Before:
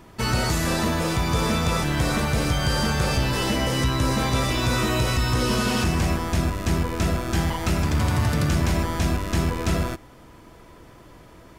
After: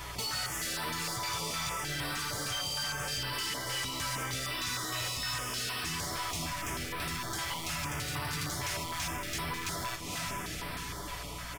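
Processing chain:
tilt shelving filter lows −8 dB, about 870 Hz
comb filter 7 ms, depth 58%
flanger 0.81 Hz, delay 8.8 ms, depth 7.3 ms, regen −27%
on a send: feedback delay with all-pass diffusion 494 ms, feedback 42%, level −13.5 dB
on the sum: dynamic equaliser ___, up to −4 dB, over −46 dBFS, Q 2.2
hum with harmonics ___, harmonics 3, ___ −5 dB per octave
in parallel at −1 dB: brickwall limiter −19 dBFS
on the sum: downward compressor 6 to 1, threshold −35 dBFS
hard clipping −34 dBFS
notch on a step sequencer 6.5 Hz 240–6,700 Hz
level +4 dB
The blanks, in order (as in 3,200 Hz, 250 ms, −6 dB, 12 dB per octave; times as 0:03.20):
210 Hz, 60 Hz, −56 dBFS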